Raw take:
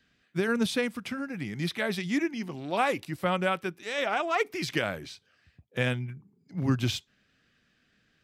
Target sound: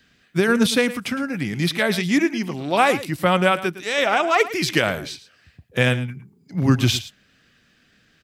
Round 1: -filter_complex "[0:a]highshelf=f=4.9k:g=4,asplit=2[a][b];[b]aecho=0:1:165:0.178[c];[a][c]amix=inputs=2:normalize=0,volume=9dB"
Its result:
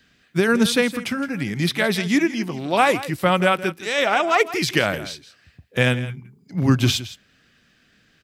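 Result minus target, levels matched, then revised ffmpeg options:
echo 55 ms late
-filter_complex "[0:a]highshelf=f=4.9k:g=4,asplit=2[a][b];[b]aecho=0:1:110:0.178[c];[a][c]amix=inputs=2:normalize=0,volume=9dB"

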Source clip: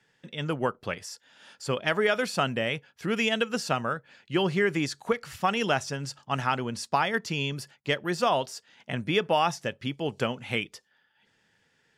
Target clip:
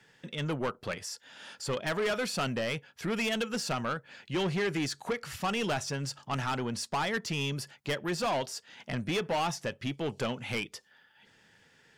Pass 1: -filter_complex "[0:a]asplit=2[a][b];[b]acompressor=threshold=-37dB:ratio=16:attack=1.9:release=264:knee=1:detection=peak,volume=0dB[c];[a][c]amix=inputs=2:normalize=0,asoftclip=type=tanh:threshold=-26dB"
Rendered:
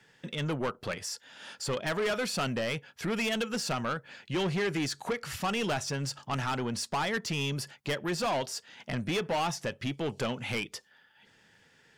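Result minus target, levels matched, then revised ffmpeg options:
compressor: peak gain reduction -11.5 dB
-filter_complex "[0:a]asplit=2[a][b];[b]acompressor=threshold=-49dB:ratio=16:attack=1.9:release=264:knee=1:detection=peak,volume=0dB[c];[a][c]amix=inputs=2:normalize=0,asoftclip=type=tanh:threshold=-26dB"

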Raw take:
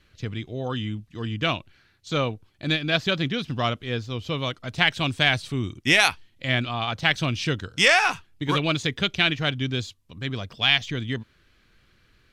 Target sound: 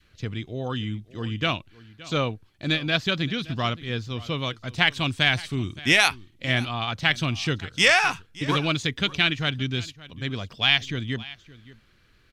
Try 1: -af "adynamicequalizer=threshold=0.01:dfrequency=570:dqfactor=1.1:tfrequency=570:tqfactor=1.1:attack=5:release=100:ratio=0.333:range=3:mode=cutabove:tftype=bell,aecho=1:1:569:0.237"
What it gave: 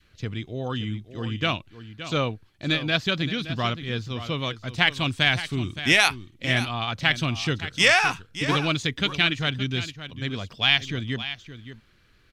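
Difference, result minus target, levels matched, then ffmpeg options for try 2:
echo-to-direct +7 dB
-af "adynamicequalizer=threshold=0.01:dfrequency=570:dqfactor=1.1:tfrequency=570:tqfactor=1.1:attack=5:release=100:ratio=0.333:range=3:mode=cutabove:tftype=bell,aecho=1:1:569:0.106"

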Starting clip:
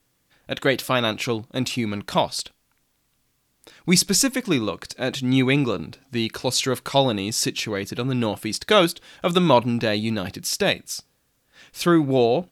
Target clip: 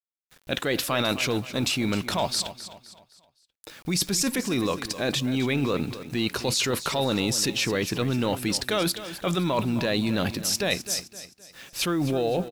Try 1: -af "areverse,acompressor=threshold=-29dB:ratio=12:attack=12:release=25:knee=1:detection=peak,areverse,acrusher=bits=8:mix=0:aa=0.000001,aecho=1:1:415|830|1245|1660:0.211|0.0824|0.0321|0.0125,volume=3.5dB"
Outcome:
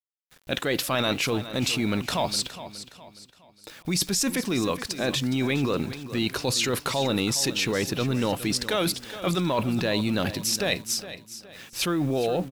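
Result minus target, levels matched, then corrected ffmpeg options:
echo 0.156 s late
-af "areverse,acompressor=threshold=-29dB:ratio=12:attack=12:release=25:knee=1:detection=peak,areverse,acrusher=bits=8:mix=0:aa=0.000001,aecho=1:1:259|518|777|1036:0.211|0.0824|0.0321|0.0125,volume=3.5dB"

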